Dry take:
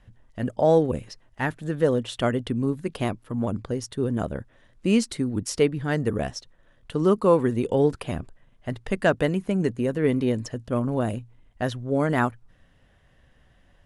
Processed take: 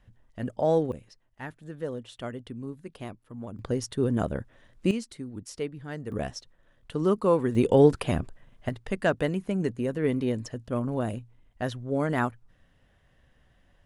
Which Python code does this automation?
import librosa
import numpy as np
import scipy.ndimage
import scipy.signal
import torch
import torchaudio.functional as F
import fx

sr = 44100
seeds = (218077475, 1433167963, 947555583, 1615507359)

y = fx.gain(x, sr, db=fx.steps((0.0, -5.0), (0.92, -12.5), (3.59, 0.0), (4.91, -12.0), (6.12, -4.0), (7.55, 3.0), (8.69, -4.0)))